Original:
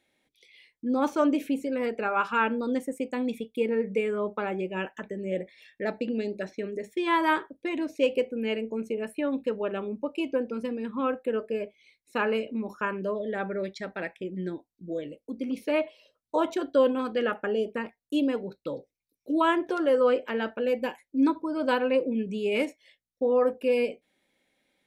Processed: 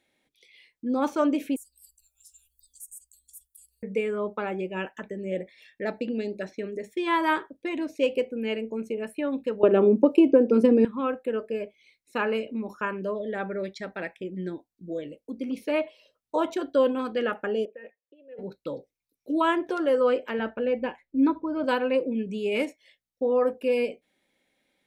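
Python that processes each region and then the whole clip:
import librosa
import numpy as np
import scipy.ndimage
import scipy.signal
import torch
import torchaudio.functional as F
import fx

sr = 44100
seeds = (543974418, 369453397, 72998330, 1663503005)

y = fx.chain(x, sr, fx.cheby2_bandstop(low_hz=210.0, high_hz=2100.0, order=4, stop_db=70),
    fx.high_shelf(hz=2500.0, db=11.5),
    fx.band_squash(depth_pct=40), at=(1.56, 3.83))
y = fx.chain(y, sr, fx.peak_eq(hz=350.0, db=13.5, octaves=2.3),
    fx.band_squash(depth_pct=100), at=(9.63, 10.85))
y = fx.chain(y, sr, fx.over_compress(threshold_db=-35.0, ratio=-1.0),
    fx.vowel_filter(vowel='e'),
    fx.air_absorb(metres=270.0), at=(17.65, 18.39))
y = fx.chain(y, sr, fx.lowpass(hz=2900.0, slope=12),
    fx.low_shelf(hz=96.0, db=11.5), at=(20.39, 21.64))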